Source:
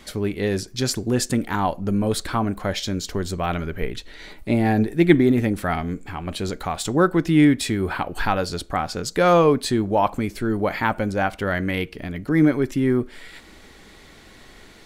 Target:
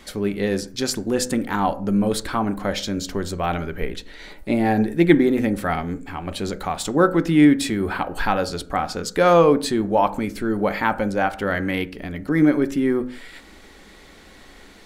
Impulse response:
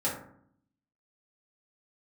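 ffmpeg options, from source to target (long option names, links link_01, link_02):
-filter_complex "[0:a]equalizer=frequency=120:width_type=o:width=0.5:gain=-11,asplit=2[link_01][link_02];[1:a]atrim=start_sample=2205,afade=type=out:start_time=0.23:duration=0.01,atrim=end_sample=10584,lowpass=2600[link_03];[link_02][link_03]afir=irnorm=-1:irlink=0,volume=-18dB[link_04];[link_01][link_04]amix=inputs=2:normalize=0"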